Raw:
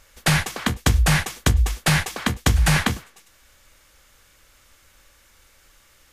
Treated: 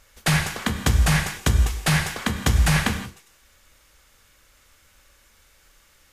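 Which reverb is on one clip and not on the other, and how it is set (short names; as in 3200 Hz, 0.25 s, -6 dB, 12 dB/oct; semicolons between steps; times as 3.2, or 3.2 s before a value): non-linear reverb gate 0.2 s flat, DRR 6.5 dB; gain -2.5 dB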